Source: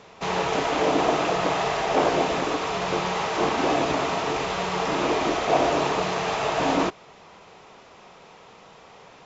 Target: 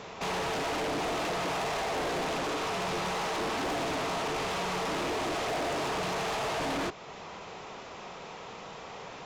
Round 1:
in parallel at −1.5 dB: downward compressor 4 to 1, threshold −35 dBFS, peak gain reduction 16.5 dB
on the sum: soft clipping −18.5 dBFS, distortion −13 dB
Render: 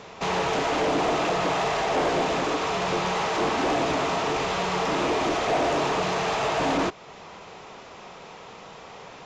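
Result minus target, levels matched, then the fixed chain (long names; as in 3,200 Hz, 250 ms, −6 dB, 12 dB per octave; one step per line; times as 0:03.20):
soft clipping: distortion −8 dB
in parallel at −1.5 dB: downward compressor 4 to 1, threshold −35 dBFS, peak gain reduction 16.5 dB
on the sum: soft clipping −30 dBFS, distortion −5 dB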